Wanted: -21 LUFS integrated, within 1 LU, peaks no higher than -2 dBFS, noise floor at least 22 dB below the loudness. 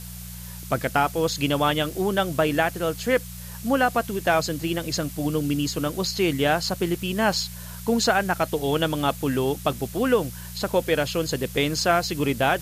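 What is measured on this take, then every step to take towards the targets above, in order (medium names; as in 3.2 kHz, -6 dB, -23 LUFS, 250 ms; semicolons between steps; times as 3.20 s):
hum 60 Hz; highest harmonic 180 Hz; hum level -37 dBFS; noise floor -38 dBFS; noise floor target -46 dBFS; loudness -24.0 LUFS; peak level -8.0 dBFS; loudness target -21.0 LUFS
-> de-hum 60 Hz, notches 3; noise print and reduce 8 dB; trim +3 dB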